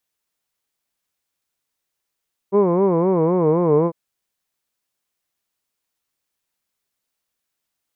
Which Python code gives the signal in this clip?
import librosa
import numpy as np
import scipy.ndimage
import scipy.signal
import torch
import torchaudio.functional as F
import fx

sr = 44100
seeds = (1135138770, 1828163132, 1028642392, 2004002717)

y = fx.vowel(sr, seeds[0], length_s=1.4, word='hood', hz=191.0, glide_st=-3.5, vibrato_hz=3.9, vibrato_st=1.5)